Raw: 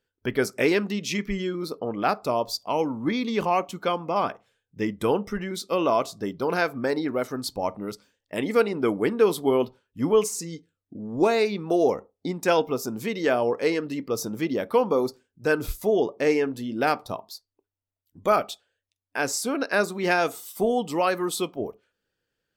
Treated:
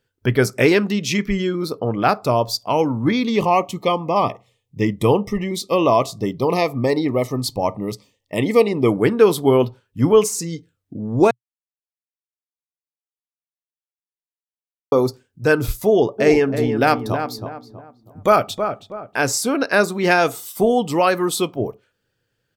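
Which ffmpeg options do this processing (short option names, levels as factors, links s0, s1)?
-filter_complex "[0:a]asettb=1/sr,asplit=3[s0][s1][s2];[s0]atrim=end=3.364[s3];[s1]atrim=start=3.36:end=8.91,asetpts=PTS-STARTPTS,afade=t=in:d=0.004:c=qsin,afade=t=out:st=5.546:d=0.004:c=qsin,asuperstop=centerf=1500:order=12:qfactor=2.8[s4];[s2]atrim=start=8.906[s5];[s3][s4]acrossfade=d=0.004:c1=hsin:c2=qsin[s6];[s6][s5]acrossfade=d=0.004:c1=qsin:c2=hsin,asplit=3[s7][s8][s9];[s7]afade=t=out:st=16.18:d=0.02[s10];[s8]asplit=2[s11][s12];[s12]adelay=322,lowpass=f=1500:p=1,volume=0.447,asplit=2[s13][s14];[s14]adelay=322,lowpass=f=1500:p=1,volume=0.37,asplit=2[s15][s16];[s16]adelay=322,lowpass=f=1500:p=1,volume=0.37,asplit=2[s17][s18];[s18]adelay=322,lowpass=f=1500:p=1,volume=0.37[s19];[s11][s13][s15][s17][s19]amix=inputs=5:normalize=0,afade=t=in:st=16.18:d=0.02,afade=t=out:st=19.18:d=0.02[s20];[s9]afade=t=in:st=19.18:d=0.02[s21];[s10][s20][s21]amix=inputs=3:normalize=0,asplit=3[s22][s23][s24];[s22]atrim=end=11.31,asetpts=PTS-STARTPTS,afade=t=out:st=11.306:d=0.004:c=hsin[s25];[s23]atrim=start=11.31:end=14.92,asetpts=PTS-STARTPTS,volume=0[s26];[s24]atrim=start=14.92,asetpts=PTS-STARTPTS,afade=t=in:d=0.004:c=hsin[s27];[s25][s26][s27]concat=n=3:v=0:a=1,equalizer=f=120:w=2.7:g=11,volume=2.11"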